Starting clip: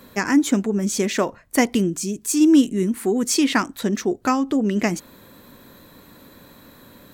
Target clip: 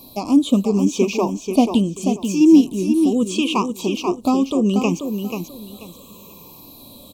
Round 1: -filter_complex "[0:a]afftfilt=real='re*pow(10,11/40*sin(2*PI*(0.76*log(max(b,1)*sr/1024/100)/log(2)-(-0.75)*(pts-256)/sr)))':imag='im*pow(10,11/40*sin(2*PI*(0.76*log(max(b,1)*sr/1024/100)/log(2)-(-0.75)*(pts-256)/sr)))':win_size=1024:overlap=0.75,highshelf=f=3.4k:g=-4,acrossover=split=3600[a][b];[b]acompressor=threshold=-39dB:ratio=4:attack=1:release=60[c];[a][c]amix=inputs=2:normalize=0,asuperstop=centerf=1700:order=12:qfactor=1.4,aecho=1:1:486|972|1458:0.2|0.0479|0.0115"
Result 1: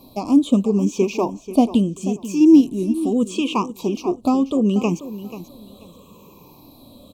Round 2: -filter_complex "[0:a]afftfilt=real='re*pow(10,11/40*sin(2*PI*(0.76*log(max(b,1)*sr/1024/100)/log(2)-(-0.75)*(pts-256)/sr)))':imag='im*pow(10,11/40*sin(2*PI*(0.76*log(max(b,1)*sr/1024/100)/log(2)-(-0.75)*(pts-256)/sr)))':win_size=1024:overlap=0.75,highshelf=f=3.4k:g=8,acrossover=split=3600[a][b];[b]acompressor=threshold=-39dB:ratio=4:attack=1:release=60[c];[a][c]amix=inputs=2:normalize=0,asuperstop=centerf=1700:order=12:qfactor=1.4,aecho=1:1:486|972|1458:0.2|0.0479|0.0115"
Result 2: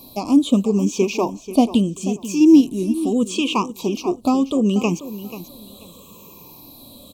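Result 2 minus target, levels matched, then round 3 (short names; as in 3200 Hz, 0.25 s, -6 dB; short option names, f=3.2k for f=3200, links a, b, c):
echo-to-direct -7 dB
-filter_complex "[0:a]afftfilt=real='re*pow(10,11/40*sin(2*PI*(0.76*log(max(b,1)*sr/1024/100)/log(2)-(-0.75)*(pts-256)/sr)))':imag='im*pow(10,11/40*sin(2*PI*(0.76*log(max(b,1)*sr/1024/100)/log(2)-(-0.75)*(pts-256)/sr)))':win_size=1024:overlap=0.75,highshelf=f=3.4k:g=8,acrossover=split=3600[a][b];[b]acompressor=threshold=-39dB:ratio=4:attack=1:release=60[c];[a][c]amix=inputs=2:normalize=0,asuperstop=centerf=1700:order=12:qfactor=1.4,aecho=1:1:486|972|1458:0.447|0.107|0.0257"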